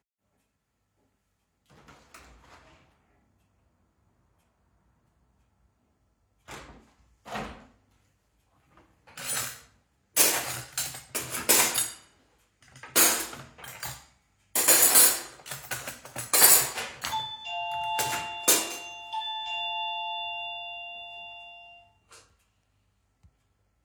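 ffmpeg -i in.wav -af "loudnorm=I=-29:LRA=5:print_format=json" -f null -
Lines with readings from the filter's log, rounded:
"input_i" : "-23.6",
"input_tp" : "-1.9",
"input_lra" : "24.2",
"input_thresh" : "-37.3",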